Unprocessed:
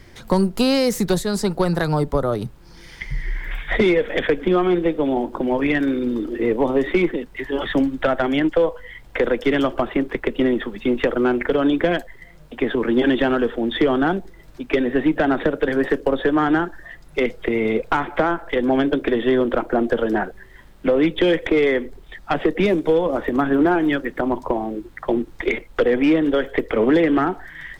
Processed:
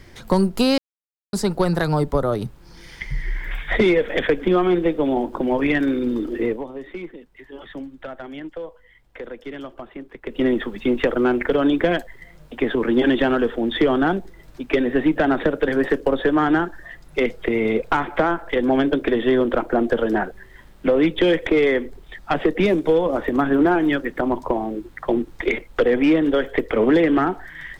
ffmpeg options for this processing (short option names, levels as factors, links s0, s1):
-filter_complex "[0:a]asplit=5[s0][s1][s2][s3][s4];[s0]atrim=end=0.78,asetpts=PTS-STARTPTS,afade=t=out:st=0.776:d=0.004:c=hsin[s5];[s1]atrim=start=0.78:end=1.33,asetpts=PTS-STARTPTS,volume=0[s6];[s2]atrim=start=1.33:end=6.65,asetpts=PTS-STARTPTS,afade=t=in:d=0.004:c=hsin,afade=t=out:st=5.07:d=0.25:silence=0.177828[s7];[s3]atrim=start=6.65:end=10.22,asetpts=PTS-STARTPTS,volume=0.178[s8];[s4]atrim=start=10.22,asetpts=PTS-STARTPTS,afade=t=in:d=0.25:silence=0.177828[s9];[s5][s6][s7][s8][s9]concat=n=5:v=0:a=1"